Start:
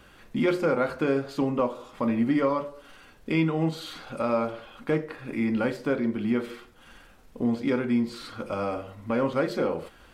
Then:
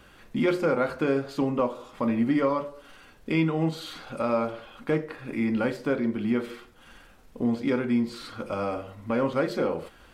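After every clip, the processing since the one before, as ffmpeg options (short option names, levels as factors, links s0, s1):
-af anull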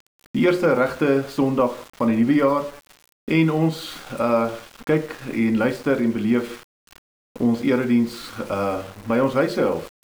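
-af "aeval=exprs='val(0)*gte(abs(val(0)),0.0075)':c=same,volume=2"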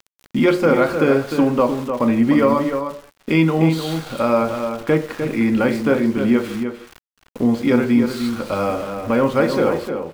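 -filter_complex "[0:a]asplit=2[s0][s1];[s1]adelay=303.2,volume=0.447,highshelf=f=4000:g=-6.82[s2];[s0][s2]amix=inputs=2:normalize=0,volume=1.33"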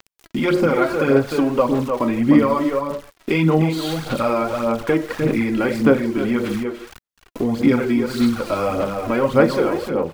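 -filter_complex "[0:a]asplit=2[s0][s1];[s1]acompressor=threshold=0.0794:ratio=6,volume=1.41[s2];[s0][s2]amix=inputs=2:normalize=0,aphaser=in_gain=1:out_gain=1:delay=3.1:decay=0.51:speed=1.7:type=sinusoidal,volume=0.501"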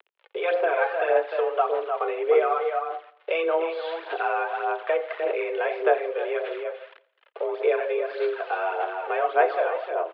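-af "aecho=1:1:85|170|255|340:0.0841|0.0471|0.0264|0.0148,highpass=f=240:t=q:w=0.5412,highpass=f=240:t=q:w=1.307,lowpass=f=3200:t=q:w=0.5176,lowpass=f=3200:t=q:w=0.7071,lowpass=f=3200:t=q:w=1.932,afreqshift=170,volume=0.531"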